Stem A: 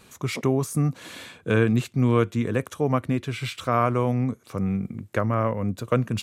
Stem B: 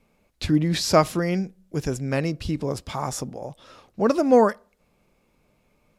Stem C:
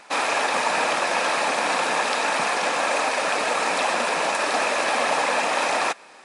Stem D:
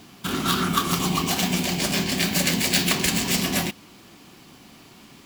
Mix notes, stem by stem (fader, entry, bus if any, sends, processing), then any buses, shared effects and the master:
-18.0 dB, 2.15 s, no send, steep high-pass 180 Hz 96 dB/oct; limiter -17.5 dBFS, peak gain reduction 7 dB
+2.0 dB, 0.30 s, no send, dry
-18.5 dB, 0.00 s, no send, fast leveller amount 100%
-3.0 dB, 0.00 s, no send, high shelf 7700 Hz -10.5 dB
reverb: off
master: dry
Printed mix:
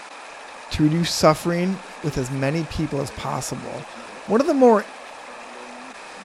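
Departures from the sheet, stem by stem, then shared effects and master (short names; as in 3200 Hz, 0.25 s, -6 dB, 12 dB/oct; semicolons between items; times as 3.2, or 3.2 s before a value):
stem A: entry 2.15 s -> 1.60 s; stem D: muted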